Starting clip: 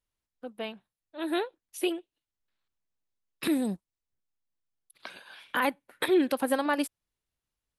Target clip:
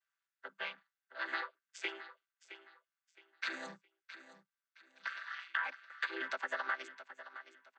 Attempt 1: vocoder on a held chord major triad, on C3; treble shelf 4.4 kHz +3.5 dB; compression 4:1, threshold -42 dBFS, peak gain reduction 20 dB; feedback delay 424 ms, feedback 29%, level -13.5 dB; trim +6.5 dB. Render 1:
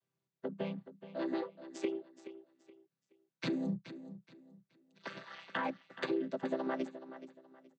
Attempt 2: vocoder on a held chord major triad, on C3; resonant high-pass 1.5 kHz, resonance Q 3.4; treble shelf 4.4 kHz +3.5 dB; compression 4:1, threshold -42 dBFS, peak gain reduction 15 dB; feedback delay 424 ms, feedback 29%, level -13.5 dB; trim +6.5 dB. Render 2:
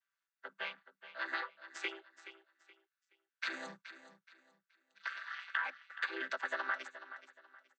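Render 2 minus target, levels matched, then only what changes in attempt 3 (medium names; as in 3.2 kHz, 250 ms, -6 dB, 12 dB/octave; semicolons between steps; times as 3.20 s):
echo 242 ms early
change: feedback delay 666 ms, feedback 29%, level -13.5 dB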